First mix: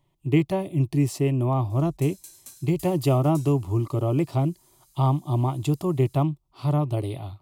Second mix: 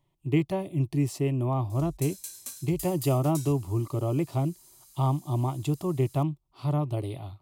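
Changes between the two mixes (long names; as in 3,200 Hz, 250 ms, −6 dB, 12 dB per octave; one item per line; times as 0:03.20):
speech −4.0 dB
background +5.5 dB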